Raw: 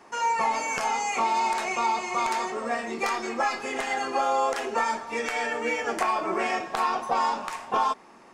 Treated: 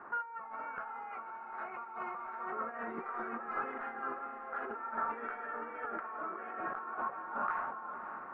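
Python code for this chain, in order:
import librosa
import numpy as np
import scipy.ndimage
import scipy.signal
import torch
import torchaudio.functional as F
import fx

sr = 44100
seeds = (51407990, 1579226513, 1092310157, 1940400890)

p1 = fx.over_compress(x, sr, threshold_db=-36.0, ratio=-1.0)
p2 = fx.ladder_lowpass(p1, sr, hz=1500.0, resonance_pct=75)
p3 = p2 + fx.echo_diffused(p2, sr, ms=578, feedback_pct=53, wet_db=-10, dry=0)
y = p3 * 10.0 ** (1.0 / 20.0)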